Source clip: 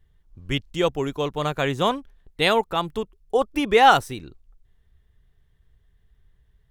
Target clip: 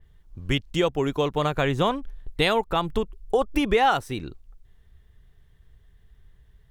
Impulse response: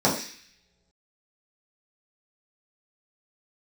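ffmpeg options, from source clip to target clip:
-filter_complex "[0:a]asettb=1/sr,asplit=3[link_01][link_02][link_03];[link_01]atrim=end=1.534[link_04];[link_02]atrim=start=1.53:end=3.86,asetpts=PTS-STARTPTS,afade=type=in:duration=0.004:curve=qsin,afade=type=out:start_time=2.326:duration=0.004:curve=qsin,lowshelf=frequency=62:gain=12[link_05];[link_03]atrim=start=3.856[link_06];[link_04][link_05]acrossfade=duration=0.004:curve1=hsin:curve2=qsin[link_07];[link_07][link_06]acrossfade=duration=0.004:curve1=qsin:curve2=hsin,acompressor=threshold=-26dB:ratio=3,adynamicequalizer=threshold=0.00501:dfrequency=3900:dqfactor=0.7:tfrequency=3900:tqfactor=0.7:attack=5:release=100:ratio=0.375:range=3:mode=cutabove:tftype=highshelf,volume=5.5dB"

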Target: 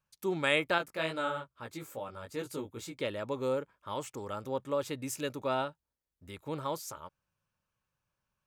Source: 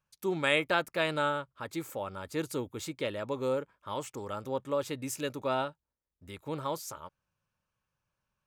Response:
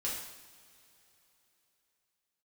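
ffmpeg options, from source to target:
-filter_complex "[0:a]asettb=1/sr,asplit=3[link_01][link_02][link_03];[link_01]atrim=end=0.784[link_04];[link_02]atrim=start=0.78:end=2.98,asetpts=PTS-STARTPTS,afade=type=in:duration=0.004:curve=qsin,afade=type=out:start_time=2.196:duration=0.004:curve=qsin,flanger=delay=16.5:depth=3.2:speed=2.4[link_05];[link_03]atrim=start=2.976[link_06];[link_04][link_05]acrossfade=duration=0.004:curve1=hsin:curve2=qsin[link_07];[link_07][link_06]acrossfade=duration=0.004:curve1=qsin:curve2=hsin,volume=-1dB"

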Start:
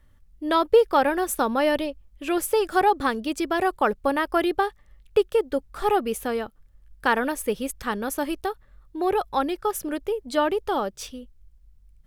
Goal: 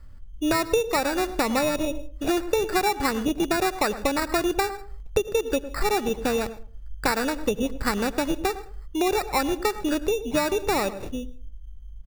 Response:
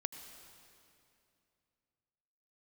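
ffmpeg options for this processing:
-filter_complex "[0:a]asplit=2[link_01][link_02];[1:a]atrim=start_sample=2205,afade=type=out:start_time=0.28:duration=0.01,atrim=end_sample=12789,asetrate=61740,aresample=44100[link_03];[link_02][link_03]afir=irnorm=-1:irlink=0,volume=-4.5dB[link_04];[link_01][link_04]amix=inputs=2:normalize=0,aresample=8000,aresample=44100,acrusher=samples=14:mix=1:aa=0.000001,lowshelf=frequency=85:gain=9,asplit=2[link_05][link_06];[link_06]adelay=104,lowpass=frequency=890:poles=1,volume=-14dB,asplit=2[link_07][link_08];[link_08]adelay=104,lowpass=frequency=890:poles=1,volume=0.25,asplit=2[link_09][link_10];[link_10]adelay=104,lowpass=frequency=890:poles=1,volume=0.25[link_11];[link_05][link_07][link_09][link_11]amix=inputs=4:normalize=0,acompressor=threshold=-23dB:ratio=6,volume=3dB"

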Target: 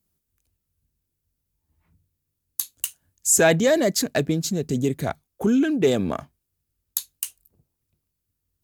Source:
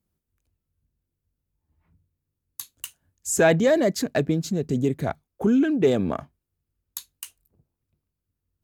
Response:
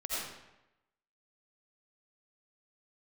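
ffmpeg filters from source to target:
-af "highshelf=frequency=3400:gain=10"

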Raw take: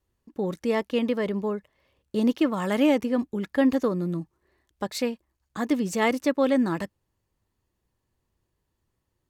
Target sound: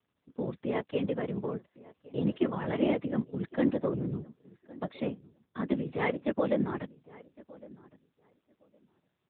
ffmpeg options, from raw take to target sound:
ffmpeg -i in.wav -filter_complex "[0:a]afftfilt=real='hypot(re,im)*cos(2*PI*random(0))':imag='hypot(re,im)*sin(2*PI*random(1))':win_size=512:overlap=0.75,asplit=2[link_01][link_02];[link_02]adelay=1110,lowpass=frequency=1800:poles=1,volume=-21dB,asplit=2[link_03][link_04];[link_04]adelay=1110,lowpass=frequency=1800:poles=1,volume=0.18[link_05];[link_01][link_03][link_05]amix=inputs=3:normalize=0" -ar 8000 -c:a libopencore_amrnb -b:a 10200 out.amr

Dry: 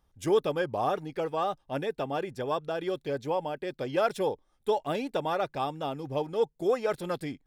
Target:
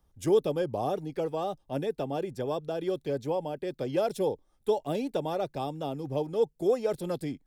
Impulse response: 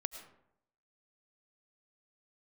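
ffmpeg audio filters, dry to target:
-filter_complex "[0:a]equalizer=frequency=2100:width_type=o:width=2.9:gain=-5.5,acrossover=split=230|880|2400[link_01][link_02][link_03][link_04];[link_03]acompressor=threshold=-52dB:ratio=6[link_05];[link_01][link_02][link_05][link_04]amix=inputs=4:normalize=0,volume=2.5dB"

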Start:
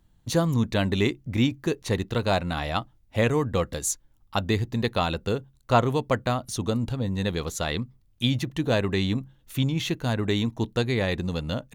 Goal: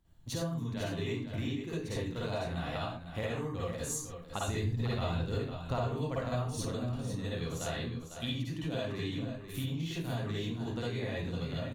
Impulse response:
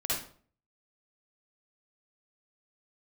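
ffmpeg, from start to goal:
-filter_complex "[1:a]atrim=start_sample=2205,afade=type=out:start_time=0.24:duration=0.01,atrim=end_sample=11025[link_01];[0:a][link_01]afir=irnorm=-1:irlink=0,acompressor=threshold=-26dB:ratio=6,asettb=1/sr,asplit=3[link_02][link_03][link_04];[link_02]atrim=end=4.484[link_05];[link_03]atrim=start=4.48:end=6.65,asetpts=PTS-STARTPTS,afade=type=in:duration=0.004:curve=qsin,afade=type=out:start_time=2.166:duration=0.004:curve=qsin,lowshelf=frequency=130:gain=9[link_06];[link_04]atrim=start=6.646[link_07];[link_05][link_06]acrossfade=duration=0.004:curve1=hsin:curve2=qsin[link_08];[link_08][link_07]acrossfade=duration=0.004:curve1=qsin:curve2=hsin,aecho=1:1:501:0.355,volume=-7.5dB"

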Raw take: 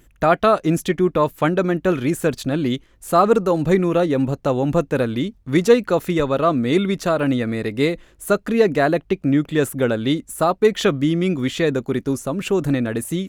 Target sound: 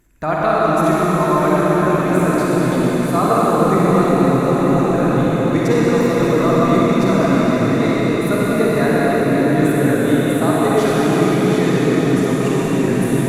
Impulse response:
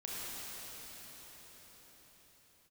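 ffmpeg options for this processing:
-filter_complex "[0:a]equalizer=frequency=500:width_type=o:width=0.33:gain=-4,equalizer=frequency=1000:width_type=o:width=0.33:gain=3,equalizer=frequency=3150:width_type=o:width=0.33:gain=-8[link_01];[1:a]atrim=start_sample=2205,asetrate=29106,aresample=44100[link_02];[link_01][link_02]afir=irnorm=-1:irlink=0,volume=-1.5dB"

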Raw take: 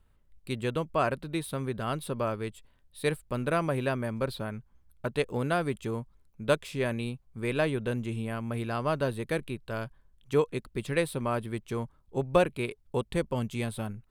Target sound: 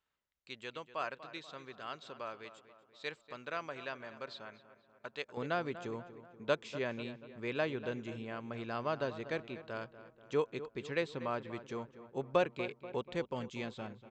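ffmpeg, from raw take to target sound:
ffmpeg -i in.wav -filter_complex "[0:a]asplit=2[link_01][link_02];[link_02]adelay=242,lowpass=frequency=2600:poles=1,volume=-13.5dB,asplit=2[link_03][link_04];[link_04]adelay=242,lowpass=frequency=2600:poles=1,volume=0.55,asplit=2[link_05][link_06];[link_06]adelay=242,lowpass=frequency=2600:poles=1,volume=0.55,asplit=2[link_07][link_08];[link_08]adelay=242,lowpass=frequency=2600:poles=1,volume=0.55,asplit=2[link_09][link_10];[link_10]adelay=242,lowpass=frequency=2600:poles=1,volume=0.55,asplit=2[link_11][link_12];[link_12]adelay=242,lowpass=frequency=2600:poles=1,volume=0.55[link_13];[link_01][link_03][link_05][link_07][link_09][link_11][link_13]amix=inputs=7:normalize=0,aresample=16000,aresample=44100,asetnsamples=nb_out_samples=441:pad=0,asendcmd='5.37 highpass f 290',highpass=frequency=1400:poles=1,volume=-5.5dB" out.wav

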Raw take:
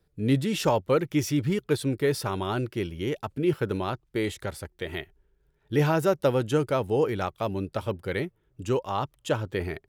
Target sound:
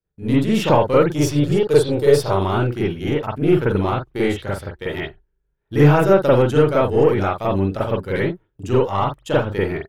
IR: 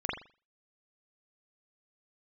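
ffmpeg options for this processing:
-filter_complex "[0:a]asettb=1/sr,asplit=3[link_01][link_02][link_03];[link_01]atrim=end=1.074[link_04];[link_02]atrim=start=1.07:end=2.37,asetpts=PTS-STARTPTS,afade=type=in:duration=0.004:curve=qsin,afade=type=out:start_time=1.296:duration=0.004:curve=qsin,equalizer=frequency=250:width_type=o:width=1:gain=-8,equalizer=frequency=500:width_type=o:width=1:gain=8,equalizer=frequency=2000:width_type=o:width=1:gain=-8,equalizer=frequency=4000:width_type=o:width=1:gain=5,equalizer=frequency=8000:width_type=o:width=1:gain=6[link_05];[link_03]atrim=start=2.366[link_06];[link_04][link_05]acrossfade=duration=0.004:curve1=hsin:curve2=qsin[link_07];[link_07][link_06]acrossfade=duration=0.004:curve1=qsin:curve2=hsin,aeval=exprs='0.335*(cos(1*acos(clip(val(0)/0.335,-1,1)))-cos(1*PI/2))+0.0106*(cos(8*acos(clip(val(0)/0.335,-1,1)))-cos(8*PI/2))':channel_layout=same,dynaudnorm=framelen=240:gausssize=3:maxgain=5dB,agate=range=-16dB:threshold=-44dB:ratio=16:detection=peak[link_08];[1:a]atrim=start_sample=2205,atrim=end_sample=3969[link_09];[link_08][link_09]afir=irnorm=-1:irlink=0,volume=-3dB"

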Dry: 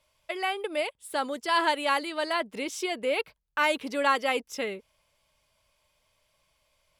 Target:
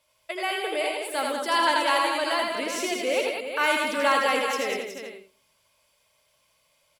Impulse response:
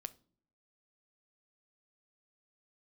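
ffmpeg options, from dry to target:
-filter_complex "[0:a]highpass=frequency=120:poles=1,highshelf=frequency=7200:gain=5.5,bandreject=frequency=50:width_type=h:width=6,bandreject=frequency=100:width_type=h:width=6,bandreject=frequency=150:width_type=h:width=6,bandreject=frequency=200:width_type=h:width=6,aecho=1:1:81|100|195|368|438:0.596|0.422|0.501|0.355|0.299,asplit=2[link_01][link_02];[1:a]atrim=start_sample=2205,adelay=83[link_03];[link_02][link_03]afir=irnorm=-1:irlink=0,volume=-6dB[link_04];[link_01][link_04]amix=inputs=2:normalize=0"

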